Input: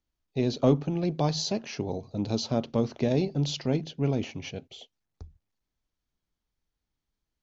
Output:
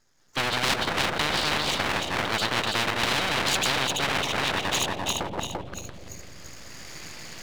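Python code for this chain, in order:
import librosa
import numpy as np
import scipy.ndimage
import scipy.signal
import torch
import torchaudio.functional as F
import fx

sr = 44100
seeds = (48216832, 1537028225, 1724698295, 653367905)

y = fx.reverse_delay_fb(x, sr, ms=171, feedback_pct=49, wet_db=-2.5)
y = fx.recorder_agc(y, sr, target_db=-17.5, rise_db_per_s=11.0, max_gain_db=30)
y = fx.lowpass_res(y, sr, hz=3400.0, q=15.0)
y = fx.auto_wah(y, sr, base_hz=430.0, top_hz=1700.0, q=3.1, full_db=-29.5, direction='down')
y = np.abs(y)
y = fx.echo_bbd(y, sr, ms=213, stages=1024, feedback_pct=71, wet_db=-16.5)
y = fx.spectral_comp(y, sr, ratio=10.0)
y = y * librosa.db_to_amplitude(7.5)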